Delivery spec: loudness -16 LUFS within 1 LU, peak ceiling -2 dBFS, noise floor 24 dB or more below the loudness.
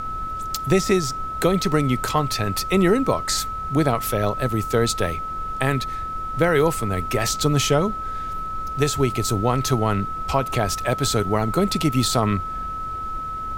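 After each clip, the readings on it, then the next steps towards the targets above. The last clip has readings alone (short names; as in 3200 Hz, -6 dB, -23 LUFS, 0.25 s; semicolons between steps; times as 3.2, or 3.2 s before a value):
steady tone 1300 Hz; tone level -27 dBFS; noise floor -29 dBFS; noise floor target -46 dBFS; loudness -22.0 LUFS; peak -6.5 dBFS; loudness target -16.0 LUFS
-> notch 1300 Hz, Q 30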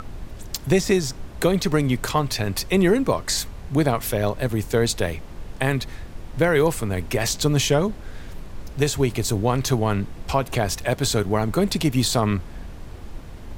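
steady tone none; noise floor -38 dBFS; noise floor target -47 dBFS
-> noise print and reduce 9 dB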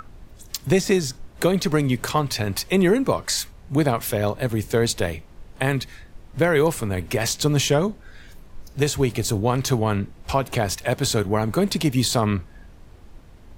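noise floor -46 dBFS; noise floor target -47 dBFS
-> noise print and reduce 6 dB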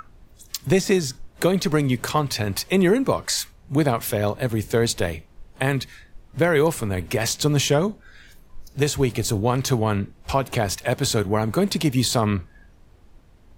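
noise floor -51 dBFS; loudness -22.5 LUFS; peak -7.5 dBFS; loudness target -16.0 LUFS
-> gain +6.5 dB; limiter -2 dBFS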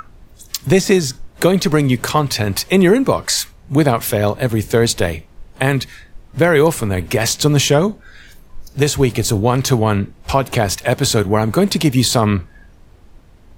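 loudness -16.0 LUFS; peak -2.0 dBFS; noise floor -45 dBFS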